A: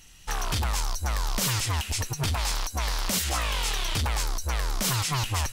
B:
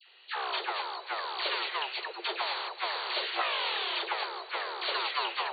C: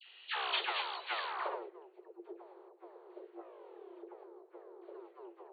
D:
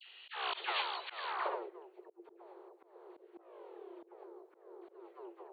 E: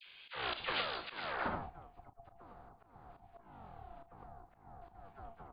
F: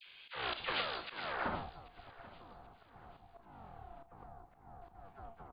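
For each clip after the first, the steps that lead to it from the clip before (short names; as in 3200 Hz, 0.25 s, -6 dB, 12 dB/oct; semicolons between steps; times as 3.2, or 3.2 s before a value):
dispersion lows, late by 92 ms, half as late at 1100 Hz; tape echo 0.258 s, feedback 77%, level -16 dB, low-pass 2400 Hz; FFT band-pass 340–4600 Hz
low-pass sweep 3100 Hz -> 290 Hz, 1.23–1.74; gain -5 dB
auto swell 0.197 s; gain +1.5 dB
ring modulator 340 Hz; doubler 35 ms -12.5 dB; gain +2 dB
feedback echo 0.786 s, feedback 36%, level -19 dB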